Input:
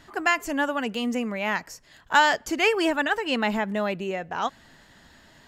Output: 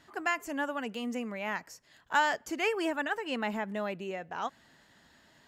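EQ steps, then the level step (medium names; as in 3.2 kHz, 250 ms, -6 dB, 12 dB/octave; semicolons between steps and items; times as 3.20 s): high-pass 110 Hz 6 dB/octave; dynamic bell 4 kHz, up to -5 dB, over -40 dBFS, Q 1.4; -7.5 dB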